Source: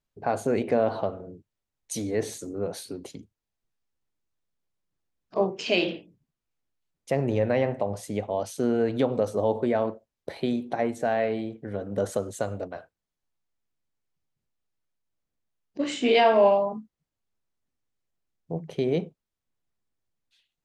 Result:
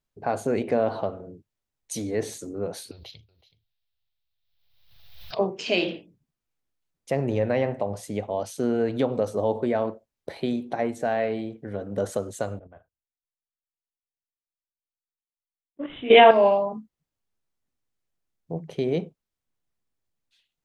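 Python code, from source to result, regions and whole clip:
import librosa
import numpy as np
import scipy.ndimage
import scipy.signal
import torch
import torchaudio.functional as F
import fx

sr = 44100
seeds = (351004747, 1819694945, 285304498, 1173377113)

y = fx.chain(x, sr, fx.curve_eq(hz=(120.0, 250.0, 670.0, 1100.0, 1800.0, 3800.0, 5500.0, 8500.0, 13000.0), db=(0, -29, -4, -8, -3, 10, -2, -29, 3)),
    fx.echo_single(ms=375, db=-18.5),
    fx.pre_swell(db_per_s=45.0), at=(2.91, 5.39))
y = fx.chain(y, sr, fx.resample_bad(factor=6, down='none', up='filtered'),
    fx.level_steps(step_db=10),
    fx.band_widen(depth_pct=100), at=(12.59, 16.31))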